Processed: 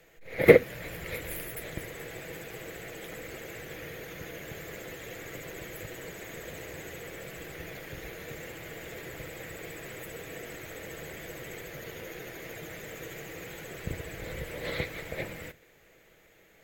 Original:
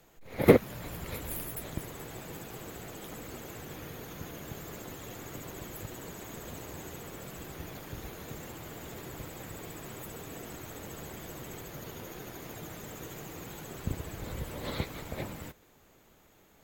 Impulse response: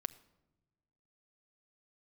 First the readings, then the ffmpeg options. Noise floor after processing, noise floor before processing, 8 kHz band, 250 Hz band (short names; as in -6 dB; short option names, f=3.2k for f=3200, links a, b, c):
-60 dBFS, -61 dBFS, -1.0 dB, -2.0 dB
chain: -filter_complex "[0:a]equalizer=f=250:t=o:w=1:g=-4,equalizer=f=500:t=o:w=1:g=8,equalizer=f=1k:t=o:w=1:g=-7,equalizer=f=2k:t=o:w=1:g=12[a];[1:a]atrim=start_sample=2205,atrim=end_sample=3087[b];[a][b]afir=irnorm=-1:irlink=0"